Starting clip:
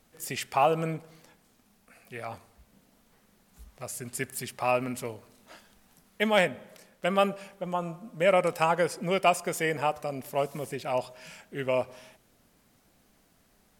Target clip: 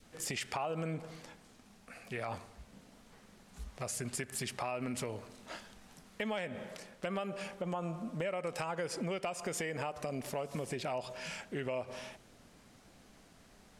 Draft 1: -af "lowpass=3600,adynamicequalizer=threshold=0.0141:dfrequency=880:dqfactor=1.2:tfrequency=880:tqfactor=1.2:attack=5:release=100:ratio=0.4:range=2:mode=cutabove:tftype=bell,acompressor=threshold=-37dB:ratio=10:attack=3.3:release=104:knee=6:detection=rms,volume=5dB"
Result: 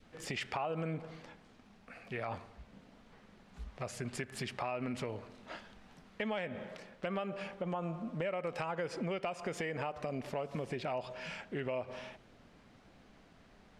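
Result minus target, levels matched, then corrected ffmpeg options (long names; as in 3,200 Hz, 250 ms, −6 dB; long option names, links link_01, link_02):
8,000 Hz band −9.5 dB
-af "lowpass=8400,adynamicequalizer=threshold=0.0141:dfrequency=880:dqfactor=1.2:tfrequency=880:tqfactor=1.2:attack=5:release=100:ratio=0.4:range=2:mode=cutabove:tftype=bell,acompressor=threshold=-37dB:ratio=10:attack=3.3:release=104:knee=6:detection=rms,volume=5dB"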